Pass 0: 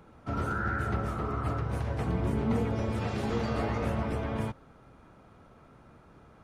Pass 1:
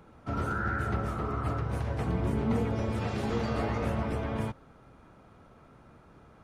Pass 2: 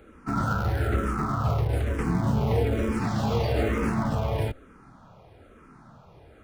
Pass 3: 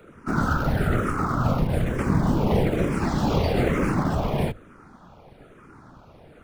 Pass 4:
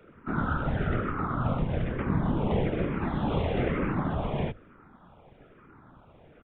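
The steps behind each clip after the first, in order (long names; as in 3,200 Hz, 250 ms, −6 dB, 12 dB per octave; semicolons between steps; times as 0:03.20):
no processing that can be heard
in parallel at −9 dB: comparator with hysteresis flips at −30 dBFS; on the sum: frequency shifter mixed with the dry sound −1.1 Hz; level +7 dB
random phases in short frames; floating-point word with a short mantissa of 6 bits; mains-hum notches 50/100 Hz; level +3 dB
downsampling to 8,000 Hz; level −5.5 dB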